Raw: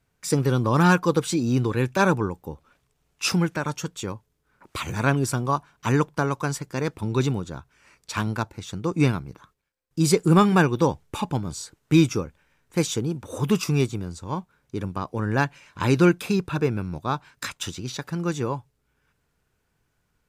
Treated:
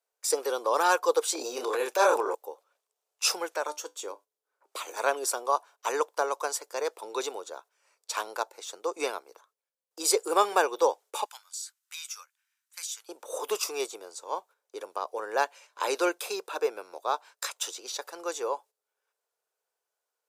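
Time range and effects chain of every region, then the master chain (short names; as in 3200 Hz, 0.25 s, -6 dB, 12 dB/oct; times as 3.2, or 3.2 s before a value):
1.35–2.35 gate -36 dBFS, range -6 dB + doubler 28 ms -4 dB + transient shaper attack -3 dB, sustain +9 dB
3.67–4.97 resonant low shelf 170 Hz -13 dB, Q 3 + resonator 100 Hz, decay 0.2 s, mix 50%
11.25–13.09 HPF 1400 Hz 24 dB/oct + high shelf 6100 Hz +4 dB + compressor 2.5:1, threshold -37 dBFS
whole clip: gate -45 dBFS, range -9 dB; steep high-pass 470 Hz 36 dB/oct; bell 2000 Hz -10 dB 1.9 oct; gain +3.5 dB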